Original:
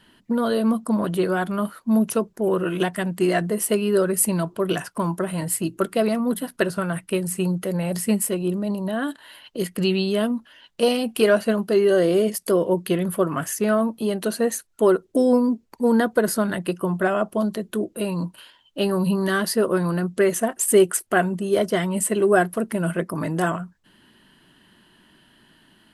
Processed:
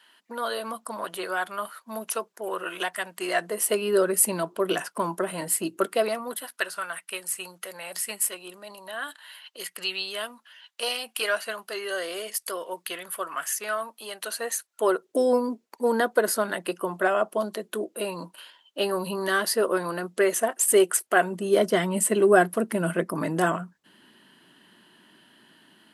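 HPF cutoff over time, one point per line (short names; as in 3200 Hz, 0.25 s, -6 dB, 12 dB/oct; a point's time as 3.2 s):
3.16 s 790 Hz
3.97 s 340 Hz
5.77 s 340 Hz
6.6 s 1100 Hz
14.21 s 1100 Hz
15.17 s 420 Hz
21.15 s 420 Hz
21.57 s 200 Hz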